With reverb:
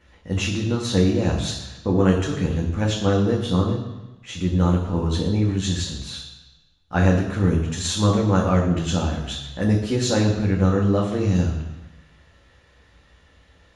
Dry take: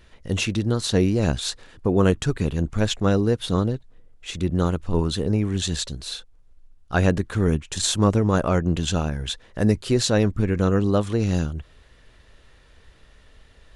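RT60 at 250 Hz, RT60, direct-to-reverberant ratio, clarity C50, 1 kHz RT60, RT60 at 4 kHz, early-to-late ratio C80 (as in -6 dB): 1.0 s, 1.1 s, -2.0 dB, 6.0 dB, 1.1 s, 1.1 s, 8.0 dB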